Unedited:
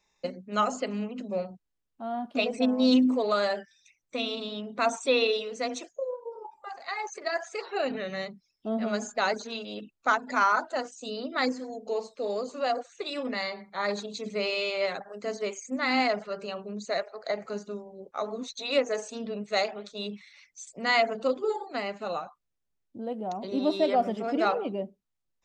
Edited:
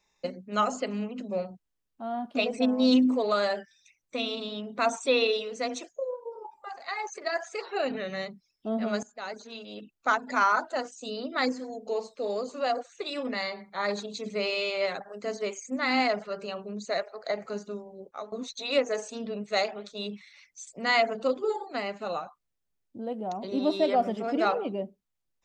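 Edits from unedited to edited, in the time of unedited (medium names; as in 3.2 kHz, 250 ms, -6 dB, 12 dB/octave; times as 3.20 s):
9.03–10.20 s: fade in, from -19 dB
18.01–18.32 s: fade out, to -15.5 dB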